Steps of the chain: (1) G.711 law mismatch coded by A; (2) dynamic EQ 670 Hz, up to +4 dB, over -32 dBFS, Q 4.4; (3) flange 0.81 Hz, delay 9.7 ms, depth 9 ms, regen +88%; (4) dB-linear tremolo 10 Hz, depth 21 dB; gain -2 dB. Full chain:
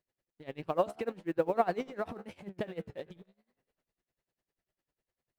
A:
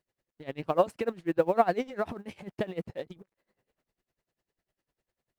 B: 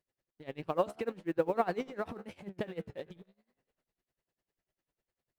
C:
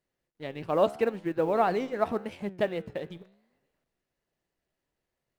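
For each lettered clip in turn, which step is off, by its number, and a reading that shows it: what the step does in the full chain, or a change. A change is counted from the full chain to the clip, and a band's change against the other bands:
3, loudness change +5.0 LU; 2, 1 kHz band -2.0 dB; 4, momentary loudness spread change -1 LU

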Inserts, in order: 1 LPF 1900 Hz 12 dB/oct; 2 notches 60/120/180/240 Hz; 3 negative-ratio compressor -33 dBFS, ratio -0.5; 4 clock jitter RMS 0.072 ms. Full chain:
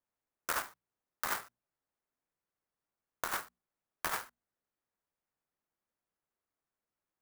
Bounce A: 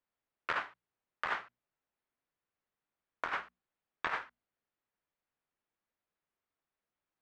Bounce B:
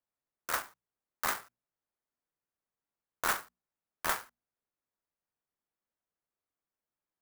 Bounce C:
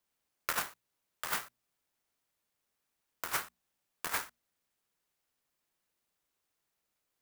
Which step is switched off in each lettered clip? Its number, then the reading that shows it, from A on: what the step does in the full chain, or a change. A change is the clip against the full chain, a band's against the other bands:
4, 2 kHz band +4.5 dB; 3, crest factor change -2.5 dB; 1, 500 Hz band -2.5 dB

